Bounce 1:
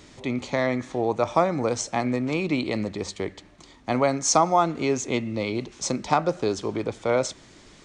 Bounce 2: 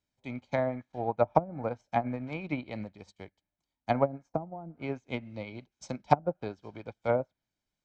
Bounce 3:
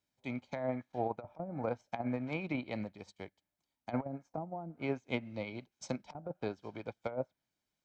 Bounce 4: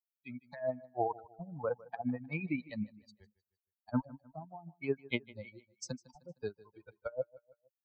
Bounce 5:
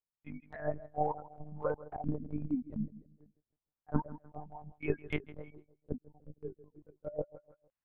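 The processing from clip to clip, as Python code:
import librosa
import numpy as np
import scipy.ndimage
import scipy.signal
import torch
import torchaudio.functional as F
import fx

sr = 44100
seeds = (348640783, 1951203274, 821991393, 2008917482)

y1 = x + 0.49 * np.pad(x, (int(1.3 * sr / 1000.0), 0))[:len(x)]
y1 = fx.env_lowpass_down(y1, sr, base_hz=340.0, full_db=-15.5)
y1 = fx.upward_expand(y1, sr, threshold_db=-45.0, expansion=2.5)
y1 = y1 * 10.0 ** (1.5 / 20.0)
y2 = fx.low_shelf(y1, sr, hz=66.0, db=-12.0)
y2 = fx.over_compress(y2, sr, threshold_db=-31.0, ratio=-0.5)
y2 = y2 * 10.0 ** (-3.0 / 20.0)
y3 = fx.bin_expand(y2, sr, power=3.0)
y3 = fx.echo_feedback(y3, sr, ms=154, feedback_pct=42, wet_db=-20.5)
y3 = y3 * 10.0 ** (6.5 / 20.0)
y4 = fx.lpc_monotone(y3, sr, seeds[0], pitch_hz=150.0, order=8)
y4 = fx.filter_lfo_lowpass(y4, sr, shape='sine', hz=0.27, low_hz=300.0, high_hz=2900.0, q=1.0)
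y4 = fx.transient(y4, sr, attack_db=1, sustain_db=5)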